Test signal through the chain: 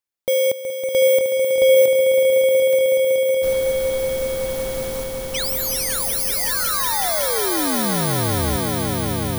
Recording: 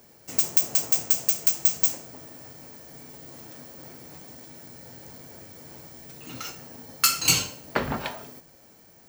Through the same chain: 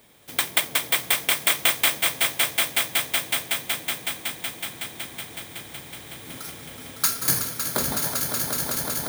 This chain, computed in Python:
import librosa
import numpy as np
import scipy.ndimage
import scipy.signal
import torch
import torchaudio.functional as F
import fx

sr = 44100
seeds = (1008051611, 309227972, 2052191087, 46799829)

y = fx.bit_reversed(x, sr, seeds[0], block=16)
y = fx.echo_swell(y, sr, ms=186, loudest=5, wet_db=-7)
y = F.gain(torch.from_numpy(y), -1.5).numpy()